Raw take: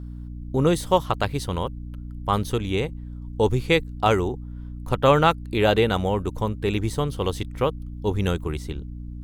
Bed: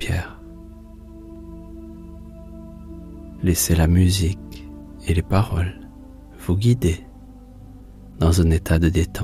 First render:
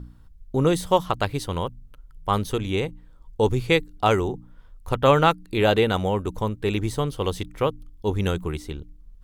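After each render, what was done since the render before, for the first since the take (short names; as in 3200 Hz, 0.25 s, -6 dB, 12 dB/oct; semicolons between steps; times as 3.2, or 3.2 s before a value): de-hum 60 Hz, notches 5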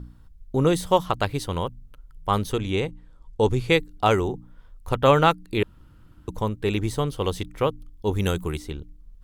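2.52–3.67 LPF 11000 Hz; 5.63–6.28 room tone; 8.11–8.57 high shelf 8200 Hz -> 5500 Hz +9.5 dB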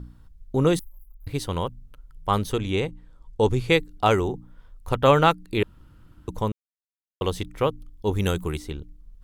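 0.79–1.27 inverse Chebyshev band-stop 120–5900 Hz, stop band 60 dB; 6.52–7.21 mute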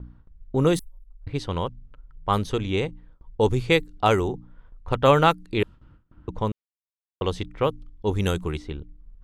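low-pass opened by the level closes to 1900 Hz, open at -17 dBFS; gate with hold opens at -41 dBFS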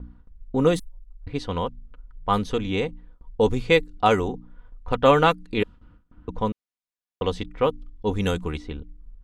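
high shelf 10000 Hz -10.5 dB; comb 4.1 ms, depth 47%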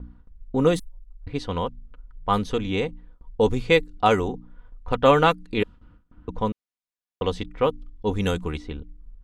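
nothing audible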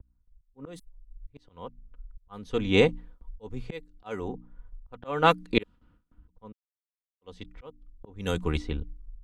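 auto swell 0.541 s; three-band expander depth 70%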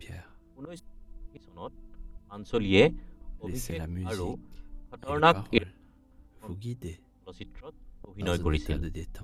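add bed -20 dB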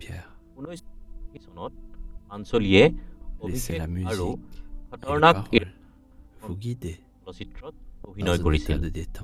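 gain +5.5 dB; limiter -2 dBFS, peak gain reduction 2 dB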